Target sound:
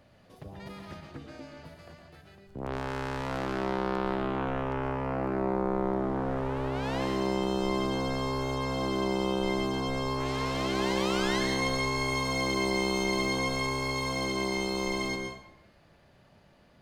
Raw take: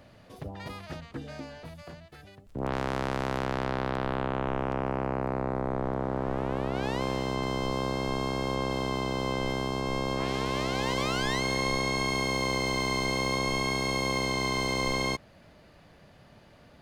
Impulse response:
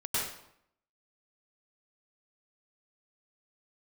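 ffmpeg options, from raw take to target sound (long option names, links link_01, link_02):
-filter_complex "[0:a]dynaudnorm=framelen=610:gausssize=11:maxgain=4dB,asplit=2[link_01][link_02];[1:a]atrim=start_sample=2205,asetrate=38367,aresample=44100[link_03];[link_02][link_03]afir=irnorm=-1:irlink=0,volume=-9dB[link_04];[link_01][link_04]amix=inputs=2:normalize=0,volume=-8dB"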